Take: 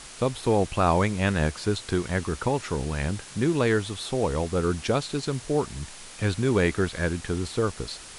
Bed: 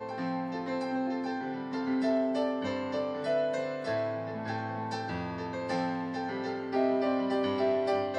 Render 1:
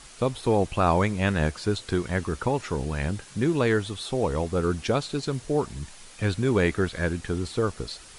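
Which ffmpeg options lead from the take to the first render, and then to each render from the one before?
-af "afftdn=nr=6:nf=-44"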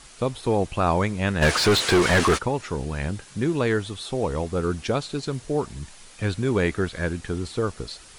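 -filter_complex "[0:a]asplit=3[s0][s1][s2];[s0]afade=t=out:st=1.41:d=0.02[s3];[s1]asplit=2[s4][s5];[s5]highpass=f=720:p=1,volume=39.8,asoftclip=type=tanh:threshold=0.335[s6];[s4][s6]amix=inputs=2:normalize=0,lowpass=f=3500:p=1,volume=0.501,afade=t=in:st=1.41:d=0.02,afade=t=out:st=2.37:d=0.02[s7];[s2]afade=t=in:st=2.37:d=0.02[s8];[s3][s7][s8]amix=inputs=3:normalize=0"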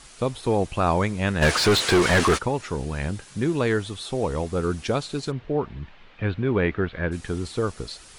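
-filter_complex "[0:a]asplit=3[s0][s1][s2];[s0]afade=t=out:st=5.3:d=0.02[s3];[s1]lowpass=f=3100:w=0.5412,lowpass=f=3100:w=1.3066,afade=t=in:st=5.3:d=0.02,afade=t=out:st=7.11:d=0.02[s4];[s2]afade=t=in:st=7.11:d=0.02[s5];[s3][s4][s5]amix=inputs=3:normalize=0"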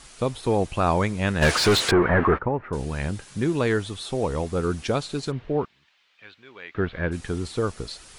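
-filter_complex "[0:a]asettb=1/sr,asplit=3[s0][s1][s2];[s0]atrim=end=1.914[s3];[s1]atrim=start=1.91:end=2.73,asetpts=PTS-STARTPTS,afade=t=in:d=0.004:c=qsin,afade=t=out:st=0.816:d=0.004:c=qsin,lowpass=f=1800:w=0.5412,lowpass=f=1800:w=1.3066[s4];[s2]atrim=start=2.726[s5];[s3][s4]acrossfade=d=0.004:c1=hsin:c2=qsin[s6];[s6][s5]acrossfade=d=0.004:c1=qsin:c2=hsin,asettb=1/sr,asplit=3[s7][s8][s9];[s7]atrim=end=5.654[s10];[s8]atrim=start=5.65:end=6.75,asetpts=PTS-STARTPTS,afade=t=in:d=0.004:c=qsin,afade=t=out:st=1.096:d=0.004:c=qsin,aderivative[s11];[s9]atrim=start=6.746[s12];[s10][s11]acrossfade=d=0.004:c1=hsin:c2=qsin[s13];[s13][s12]acrossfade=d=0.004:c1=qsin:c2=hsin"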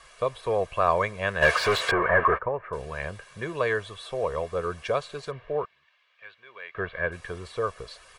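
-filter_complex "[0:a]acrossover=split=490 2800:gain=0.224 1 0.251[s0][s1][s2];[s0][s1][s2]amix=inputs=3:normalize=0,aecho=1:1:1.8:0.64"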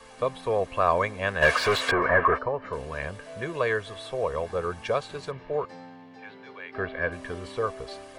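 -filter_complex "[1:a]volume=0.211[s0];[0:a][s0]amix=inputs=2:normalize=0"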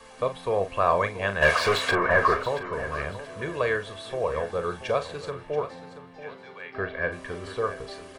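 -filter_complex "[0:a]asplit=2[s0][s1];[s1]adelay=40,volume=0.316[s2];[s0][s2]amix=inputs=2:normalize=0,aecho=1:1:681|1362|2043:0.211|0.055|0.0143"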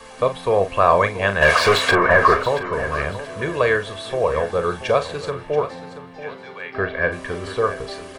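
-af "volume=2.37,alimiter=limit=0.708:level=0:latency=1"

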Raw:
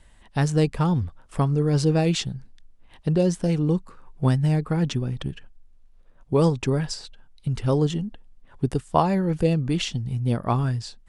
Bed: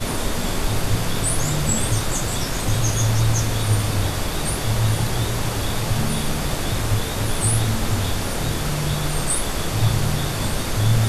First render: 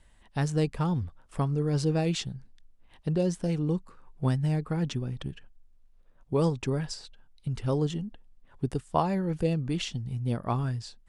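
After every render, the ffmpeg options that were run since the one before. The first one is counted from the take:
-af "volume=0.501"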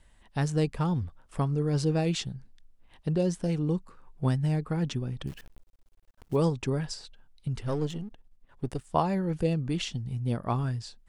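-filter_complex "[0:a]asettb=1/sr,asplit=3[s0][s1][s2];[s0]atrim=end=5.274[s3];[s1]atrim=start=5.27:end=6.36,asetpts=PTS-STARTPTS,afade=t=in:d=0.004:c=qsin,afade=t=out:st=1.086:d=0.004:c=qsin,acrusher=bits=9:dc=4:mix=0:aa=0.000001[s4];[s2]atrim=start=6.356[s5];[s3][s4]acrossfade=d=0.004:c1=hsin:c2=qsin[s6];[s6][s5]acrossfade=d=0.004:c1=qsin:c2=hsin,asettb=1/sr,asplit=3[s7][s8][s9];[s7]atrim=end=7.614[s10];[s8]atrim=start=7.61:end=8.86,asetpts=PTS-STARTPTS,afade=t=in:d=0.004:c=qsin,afade=t=out:st=1.246:d=0.004:c=qsin,aeval=exprs='if(lt(val(0),0),0.447*val(0),val(0))':c=same[s11];[s9]atrim=start=8.856[s12];[s10][s11]acrossfade=d=0.004:c1=hsin:c2=qsin[s13];[s13][s12]acrossfade=d=0.004:c1=qsin:c2=hsin"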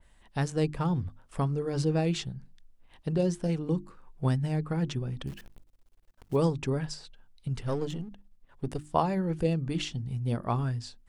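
-af "bandreject=f=50:t=h:w=6,bandreject=f=100:t=h:w=6,bandreject=f=150:t=h:w=6,bandreject=f=200:t=h:w=6,bandreject=f=250:t=h:w=6,bandreject=f=300:t=h:w=6,bandreject=f=350:t=h:w=6,adynamicequalizer=threshold=0.00447:dfrequency=2900:dqfactor=0.7:tfrequency=2900:tqfactor=0.7:attack=5:release=100:ratio=0.375:range=2:mode=cutabove:tftype=highshelf"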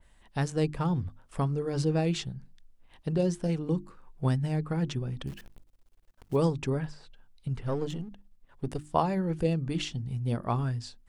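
-filter_complex "[0:a]asettb=1/sr,asplit=3[s0][s1][s2];[s0]atrim=end=6.744[s3];[s1]atrim=start=6.74:end=7.86,asetpts=PTS-STARTPTS,afade=t=in:d=0.004:c=qsin,afade=t=out:st=1.116:d=0.004:c=qsin,acrossover=split=2500[s4][s5];[s5]acompressor=threshold=0.00141:ratio=4:attack=1:release=60[s6];[s4][s6]amix=inputs=2:normalize=0[s7];[s2]atrim=start=7.856[s8];[s3][s7]acrossfade=d=0.004:c1=hsin:c2=qsin[s9];[s9][s8]acrossfade=d=0.004:c1=qsin:c2=hsin"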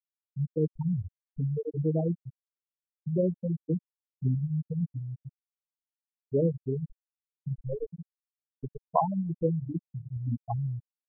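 -af "afftfilt=real='re*gte(hypot(re,im),0.224)':imag='im*gte(hypot(re,im),0.224)':win_size=1024:overlap=0.75,equalizer=f=750:w=1.3:g=3.5"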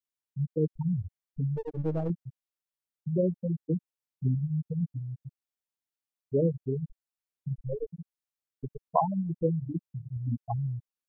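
-filter_complex "[0:a]asettb=1/sr,asplit=3[s0][s1][s2];[s0]atrim=end=1.564[s3];[s1]atrim=start=1.56:end=2.1,asetpts=PTS-STARTPTS,afade=t=in:d=0.004:c=qsin,afade=t=out:st=0.536:d=0.004:c=qsin,aeval=exprs='if(lt(val(0),0),0.447*val(0),val(0))':c=same[s4];[s2]atrim=start=2.096[s5];[s3][s4]acrossfade=d=0.004:c1=hsin:c2=qsin[s6];[s6][s5]acrossfade=d=0.004:c1=qsin:c2=hsin"

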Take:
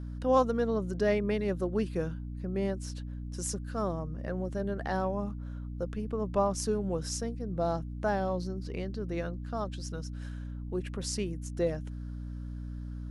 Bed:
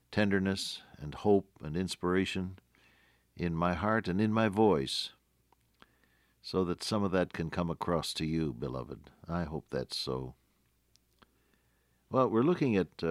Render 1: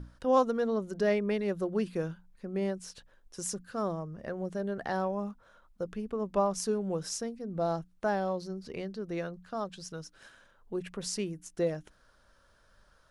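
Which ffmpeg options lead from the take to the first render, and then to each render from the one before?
-af "bandreject=f=60:t=h:w=6,bandreject=f=120:t=h:w=6,bandreject=f=180:t=h:w=6,bandreject=f=240:t=h:w=6,bandreject=f=300:t=h:w=6"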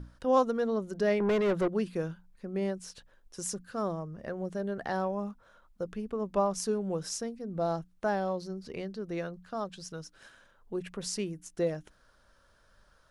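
-filter_complex "[0:a]asettb=1/sr,asplit=3[s0][s1][s2];[s0]atrim=end=1.204[s3];[s1]atrim=start=1.2:end=1.68,asetpts=PTS-STARTPTS,afade=t=in:d=0.004:c=qsin,afade=t=out:st=0.476:d=0.004:c=qsin,asplit=2[s4][s5];[s5]highpass=f=720:p=1,volume=17.8,asoftclip=type=tanh:threshold=0.106[s6];[s4][s6]amix=inputs=2:normalize=0,lowpass=f=1500:p=1,volume=0.501[s7];[s2]atrim=start=1.676[s8];[s3][s7]acrossfade=d=0.004:c1=hsin:c2=qsin[s9];[s9][s8]acrossfade=d=0.004:c1=qsin:c2=hsin"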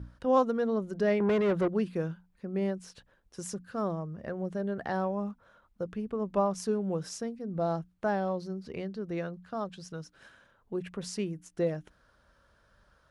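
-af "highpass=42,bass=f=250:g=3,treble=f=4000:g=-6"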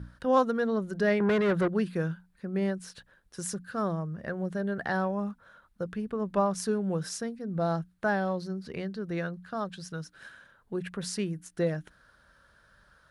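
-af "equalizer=f=160:t=o:w=0.67:g=4,equalizer=f=1600:t=o:w=0.67:g=8,equalizer=f=4000:t=o:w=0.67:g=5,equalizer=f=10000:t=o:w=0.67:g=8"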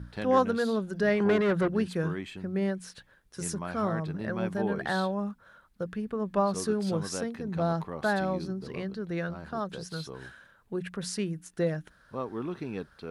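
-filter_complex "[1:a]volume=0.422[s0];[0:a][s0]amix=inputs=2:normalize=0"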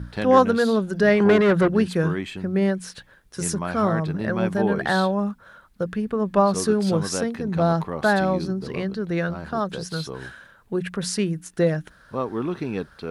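-af "volume=2.51"

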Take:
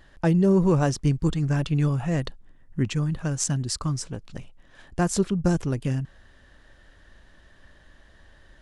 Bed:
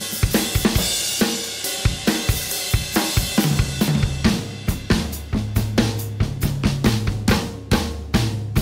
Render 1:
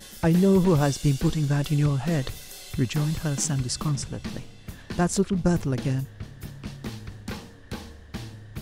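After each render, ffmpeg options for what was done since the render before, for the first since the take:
-filter_complex "[1:a]volume=0.133[s0];[0:a][s0]amix=inputs=2:normalize=0"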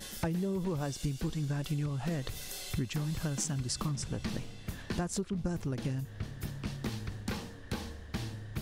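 -af "acompressor=threshold=0.0316:ratio=12"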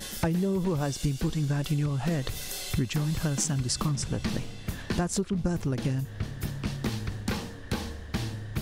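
-af "volume=2"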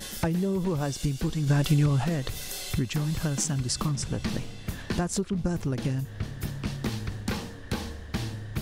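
-filter_complex "[0:a]asplit=3[s0][s1][s2];[s0]afade=t=out:st=1.46:d=0.02[s3];[s1]acontrast=35,afade=t=in:st=1.46:d=0.02,afade=t=out:st=2.03:d=0.02[s4];[s2]afade=t=in:st=2.03:d=0.02[s5];[s3][s4][s5]amix=inputs=3:normalize=0"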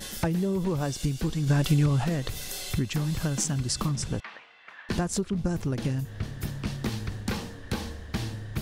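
-filter_complex "[0:a]asettb=1/sr,asplit=3[s0][s1][s2];[s0]atrim=end=4.204[s3];[s1]atrim=start=4.2:end=4.89,asetpts=PTS-STARTPTS,afade=t=in:d=0.004:c=qsin,afade=t=out:st=0.686:d=0.004:c=qsin,asuperpass=centerf=1500:order=4:qfactor=0.92[s4];[s2]atrim=start=4.886[s5];[s3][s4]acrossfade=d=0.004:c1=hsin:c2=qsin[s6];[s6][s5]acrossfade=d=0.004:c1=qsin:c2=hsin"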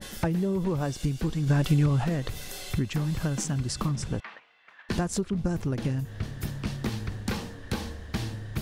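-af "agate=range=0.447:threshold=0.00631:ratio=16:detection=peak,adynamicequalizer=threshold=0.00355:dfrequency=3000:dqfactor=0.7:tfrequency=3000:tqfactor=0.7:attack=5:release=100:ratio=0.375:range=2.5:mode=cutabove:tftype=highshelf"

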